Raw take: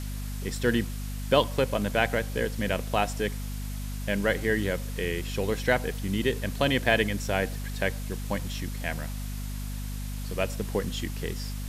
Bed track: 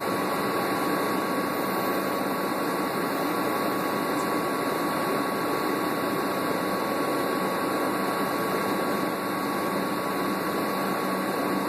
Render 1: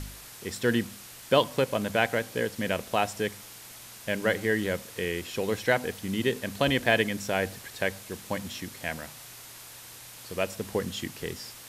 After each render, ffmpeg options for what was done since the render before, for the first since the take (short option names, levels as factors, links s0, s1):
-af "bandreject=f=50:t=h:w=4,bandreject=f=100:t=h:w=4,bandreject=f=150:t=h:w=4,bandreject=f=200:t=h:w=4,bandreject=f=250:t=h:w=4"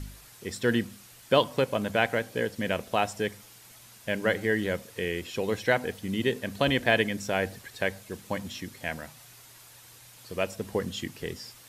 -af "afftdn=nr=7:nf=-46"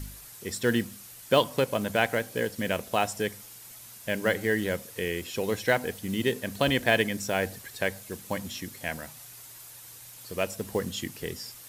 -filter_complex "[0:a]acrossover=split=3500[s0][s1];[s0]acrusher=bits=6:mode=log:mix=0:aa=0.000001[s2];[s1]crystalizer=i=1:c=0[s3];[s2][s3]amix=inputs=2:normalize=0"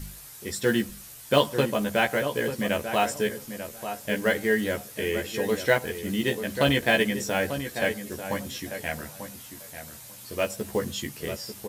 -filter_complex "[0:a]asplit=2[s0][s1];[s1]adelay=14,volume=0.708[s2];[s0][s2]amix=inputs=2:normalize=0,asplit=2[s3][s4];[s4]adelay=892,lowpass=f=2000:p=1,volume=0.355,asplit=2[s5][s6];[s6]adelay=892,lowpass=f=2000:p=1,volume=0.18,asplit=2[s7][s8];[s8]adelay=892,lowpass=f=2000:p=1,volume=0.18[s9];[s3][s5][s7][s9]amix=inputs=4:normalize=0"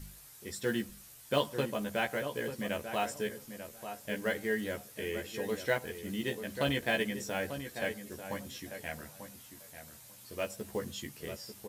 -af "volume=0.355"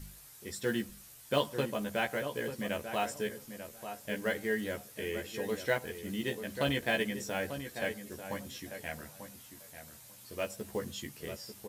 -af anull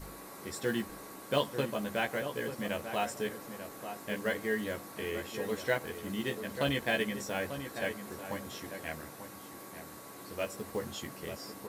-filter_complex "[1:a]volume=0.075[s0];[0:a][s0]amix=inputs=2:normalize=0"